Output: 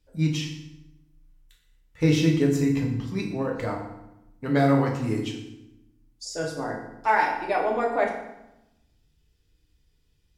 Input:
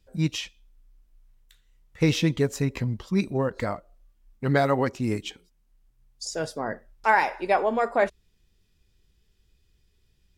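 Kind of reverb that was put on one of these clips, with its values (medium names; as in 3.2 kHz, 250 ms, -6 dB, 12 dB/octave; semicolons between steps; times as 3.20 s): FDN reverb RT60 0.9 s, low-frequency decay 1.4×, high-frequency decay 0.8×, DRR -1 dB; trim -4.5 dB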